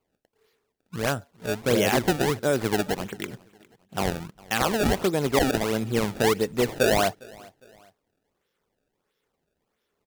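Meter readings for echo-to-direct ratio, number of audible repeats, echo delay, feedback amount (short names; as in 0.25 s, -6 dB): -23.5 dB, 2, 0.407 s, 39%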